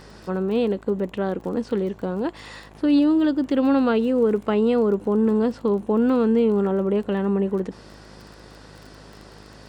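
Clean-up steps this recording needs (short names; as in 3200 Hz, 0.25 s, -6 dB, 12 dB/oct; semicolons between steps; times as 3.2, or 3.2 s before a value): de-click; de-hum 52 Hz, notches 22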